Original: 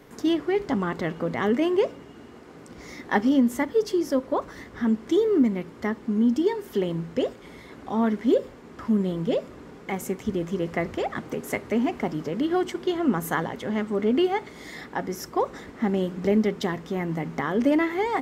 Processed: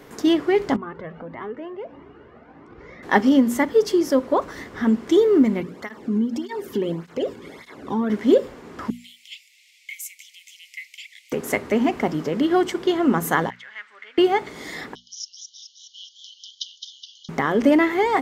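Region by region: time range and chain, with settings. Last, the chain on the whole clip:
0.76–3.03 s: low-pass 1.9 kHz + compression 2:1, threshold -36 dBFS + Shepard-style flanger rising 1.6 Hz
5.60–8.10 s: compression 4:1, threshold -25 dBFS + peaking EQ 72 Hz +11 dB 2.6 oct + cancelling through-zero flanger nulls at 1.7 Hz, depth 1.7 ms
8.90–11.32 s: steep high-pass 2.1 kHz 96 dB/octave + dynamic bell 3.7 kHz, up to -4 dB, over -52 dBFS, Q 0.71
13.50–14.18 s: ladder band-pass 2.1 kHz, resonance 45% + treble shelf 3 kHz +8 dB
14.95–17.29 s: brick-wall FIR band-pass 2.9–6.8 kHz + modulated delay 210 ms, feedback 62%, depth 113 cents, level -6 dB
whole clip: bass shelf 220 Hz -3.5 dB; hum notches 60/120/180/240 Hz; trim +6 dB

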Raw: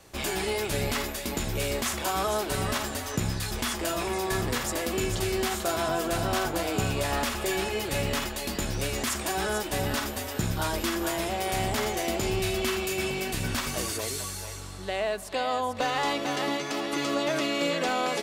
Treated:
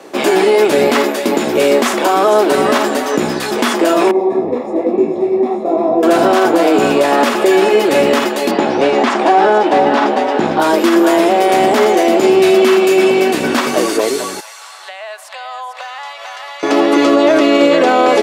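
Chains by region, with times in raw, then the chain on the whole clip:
4.11–6.03 s: boxcar filter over 29 samples + hum notches 60/120/180 Hz + detune thickener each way 41 cents
8.51–10.60 s: low-pass 4.1 kHz + peaking EQ 810 Hz +8 dB 0.52 oct + hard clipper -22 dBFS
14.40–16.63 s: Bessel high-pass 1.2 kHz, order 8 + compression, threshold -41 dBFS
whole clip: high-pass 290 Hz 24 dB/octave; tilt EQ -3.5 dB/octave; loudness maximiser +19 dB; trim -1 dB

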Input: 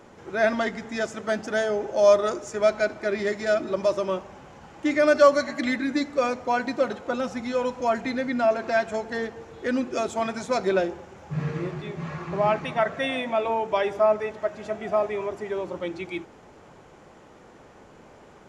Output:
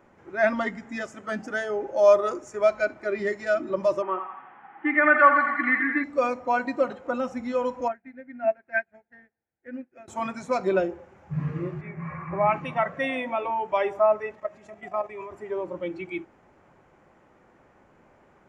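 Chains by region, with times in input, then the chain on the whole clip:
4.02–6.04 s: cabinet simulation 270–2700 Hz, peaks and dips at 560 Hz -10 dB, 810 Hz +7 dB, 1.3 kHz +7 dB, 1.8 kHz +7 dB + thinning echo 84 ms, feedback 81%, high-pass 840 Hz, level -5.5 dB
7.88–10.08 s: FFT filter 250 Hz 0 dB, 440 Hz -4 dB, 770 Hz +1 dB, 1.1 kHz -11 dB, 1.6 kHz +5 dB, 2.5 kHz +1 dB, 3.6 kHz -11 dB + upward expansion 2.5:1, over -41 dBFS
11.81–12.53 s: resonant high shelf 2.7 kHz -7 dB, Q 3 + hum notches 50/100/150/200/250/300/350/400/450 Hz
14.35–15.31 s: treble shelf 2.6 kHz +4.5 dB + band-stop 1.5 kHz, Q 9.1 + level held to a coarse grid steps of 11 dB
whole clip: band-stop 450 Hz, Q 12; spectral noise reduction 8 dB; resonant high shelf 2.8 kHz -6.5 dB, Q 1.5

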